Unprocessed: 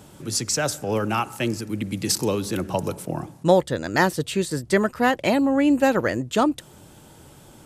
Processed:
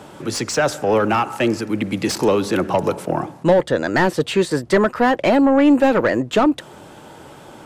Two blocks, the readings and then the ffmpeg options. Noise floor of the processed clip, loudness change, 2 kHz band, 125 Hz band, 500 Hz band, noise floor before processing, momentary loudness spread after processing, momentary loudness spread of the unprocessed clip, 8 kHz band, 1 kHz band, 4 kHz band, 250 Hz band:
−42 dBFS, +5.0 dB, +4.0 dB, +2.0 dB, +6.0 dB, −49 dBFS, 9 LU, 8 LU, −2.5 dB, +5.0 dB, +2.0 dB, +5.0 dB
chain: -filter_complex "[0:a]asplit=2[link_01][link_02];[link_02]highpass=frequency=720:poles=1,volume=20dB,asoftclip=type=tanh:threshold=-3.5dB[link_03];[link_01][link_03]amix=inputs=2:normalize=0,lowpass=frequency=1200:poles=1,volume=-6dB,acrossover=split=420[link_04][link_05];[link_05]acompressor=threshold=-18dB:ratio=2[link_06];[link_04][link_06]amix=inputs=2:normalize=0,volume=1.5dB"

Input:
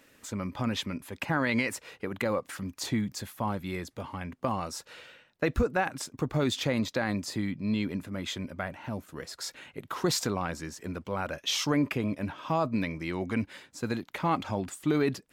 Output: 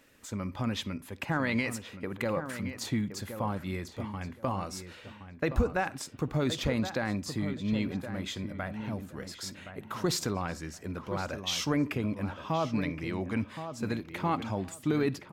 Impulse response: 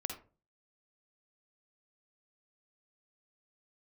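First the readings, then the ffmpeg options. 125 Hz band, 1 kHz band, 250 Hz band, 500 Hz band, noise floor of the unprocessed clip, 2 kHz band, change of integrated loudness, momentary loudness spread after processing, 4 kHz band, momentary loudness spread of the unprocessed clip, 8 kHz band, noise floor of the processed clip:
0.0 dB, −2.0 dB, −1.0 dB, −2.0 dB, −64 dBFS, −2.0 dB, −1.5 dB, 10 LU, −2.5 dB, 11 LU, −2.5 dB, −51 dBFS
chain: -filter_complex "[0:a]lowshelf=frequency=97:gain=6.5,asplit=2[link_01][link_02];[link_02]adelay=1070,lowpass=frequency=2500:poles=1,volume=-9.5dB,asplit=2[link_03][link_04];[link_04]adelay=1070,lowpass=frequency=2500:poles=1,volume=0.21,asplit=2[link_05][link_06];[link_06]adelay=1070,lowpass=frequency=2500:poles=1,volume=0.21[link_07];[link_01][link_03][link_05][link_07]amix=inputs=4:normalize=0,asplit=2[link_08][link_09];[1:a]atrim=start_sample=2205[link_10];[link_09][link_10]afir=irnorm=-1:irlink=0,volume=-14dB[link_11];[link_08][link_11]amix=inputs=2:normalize=0,volume=-4dB"

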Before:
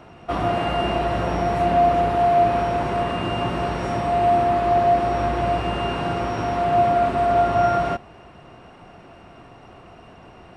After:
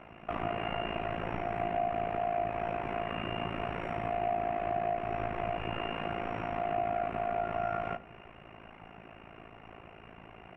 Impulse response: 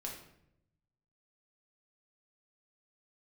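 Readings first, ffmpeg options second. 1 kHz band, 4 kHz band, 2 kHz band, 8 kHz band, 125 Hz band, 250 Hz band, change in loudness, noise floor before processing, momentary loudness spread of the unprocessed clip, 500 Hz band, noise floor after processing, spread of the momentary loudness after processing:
−13.5 dB, −11.5 dB, −9.5 dB, can't be measured, −14.0 dB, −13.5 dB, −13.5 dB, −46 dBFS, 7 LU, −13.5 dB, −53 dBFS, 19 LU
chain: -filter_complex "[0:a]highshelf=frequency=3300:width_type=q:width=3:gain=-10,acompressor=threshold=-28dB:ratio=2.5,tremolo=f=55:d=0.919,asplit=2[link_01][link_02];[1:a]atrim=start_sample=2205[link_03];[link_02][link_03]afir=irnorm=-1:irlink=0,volume=-10dB[link_04];[link_01][link_04]amix=inputs=2:normalize=0,volume=-4.5dB"

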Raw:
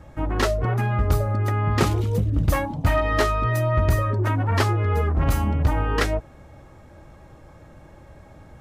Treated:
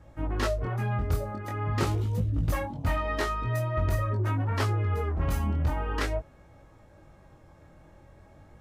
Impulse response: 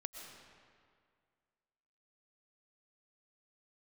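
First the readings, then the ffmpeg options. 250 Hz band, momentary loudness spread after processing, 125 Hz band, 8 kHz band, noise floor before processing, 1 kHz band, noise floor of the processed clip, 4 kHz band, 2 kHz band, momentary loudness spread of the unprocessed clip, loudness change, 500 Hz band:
−7.0 dB, 3 LU, −6.5 dB, −7.5 dB, −48 dBFS, −7.5 dB, −55 dBFS, −7.5 dB, −7.5 dB, 2 LU, −7.0 dB, −7.5 dB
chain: -af "flanger=delay=18:depth=6.7:speed=0.45,volume=-4.5dB"

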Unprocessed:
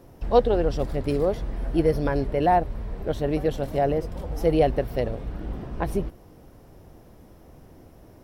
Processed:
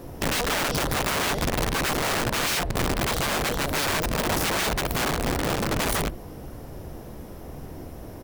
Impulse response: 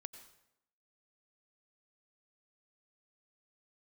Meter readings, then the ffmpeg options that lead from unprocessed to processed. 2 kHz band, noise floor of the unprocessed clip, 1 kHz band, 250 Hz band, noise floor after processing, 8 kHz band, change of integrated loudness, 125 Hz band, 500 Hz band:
+13.0 dB, −50 dBFS, 0.0 dB, −2.0 dB, −40 dBFS, can't be measured, +0.5 dB, −0.5 dB, −6.0 dB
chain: -filter_complex "[0:a]asplit=2[link_01][link_02];[1:a]atrim=start_sample=2205,atrim=end_sample=3969,asetrate=79380,aresample=44100[link_03];[link_02][link_03]afir=irnorm=-1:irlink=0,volume=0dB[link_04];[link_01][link_04]amix=inputs=2:normalize=0,acompressor=threshold=-26dB:ratio=4,highshelf=frequency=9100:gain=3.5,asplit=2[link_05][link_06];[link_06]aecho=0:1:14|58:0.237|0.266[link_07];[link_05][link_07]amix=inputs=2:normalize=0,aeval=exprs='(mod(23.7*val(0)+1,2)-1)/23.7':channel_layout=same,volume=7.5dB"

